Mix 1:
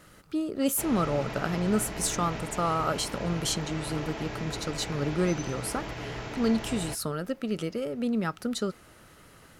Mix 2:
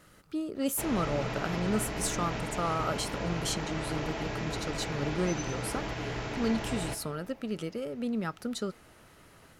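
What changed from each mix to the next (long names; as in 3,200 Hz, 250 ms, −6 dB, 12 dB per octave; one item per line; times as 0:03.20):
speech −4.0 dB
reverb: on, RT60 2.0 s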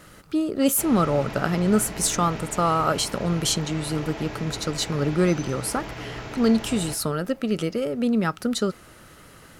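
speech +10.0 dB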